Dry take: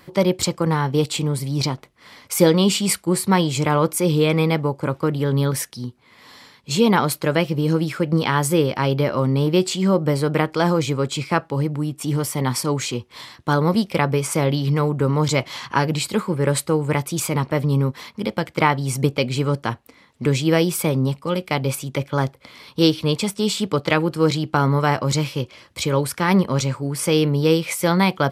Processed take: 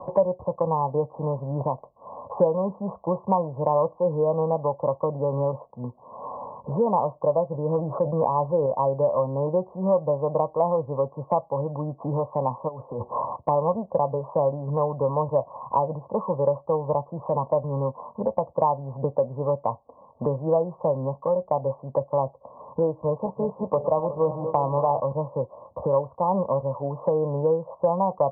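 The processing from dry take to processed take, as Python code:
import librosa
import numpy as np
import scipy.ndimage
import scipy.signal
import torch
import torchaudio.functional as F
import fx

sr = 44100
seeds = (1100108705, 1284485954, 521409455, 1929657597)

y = fx.sustainer(x, sr, db_per_s=25.0, at=(7.52, 8.66))
y = fx.over_compress(y, sr, threshold_db=-34.0, ratio=-1.0, at=(12.67, 13.35), fade=0.02)
y = fx.reverse_delay_fb(y, sr, ms=182, feedback_pct=67, wet_db=-11.5, at=(22.9, 25.0))
y = scipy.signal.sosfilt(scipy.signal.cheby1(8, 1.0, 1100.0, 'lowpass', fs=sr, output='sos'), y)
y = fx.low_shelf_res(y, sr, hz=440.0, db=-8.0, q=3.0)
y = fx.band_squash(y, sr, depth_pct=70)
y = F.gain(torch.from_numpy(y), -2.0).numpy()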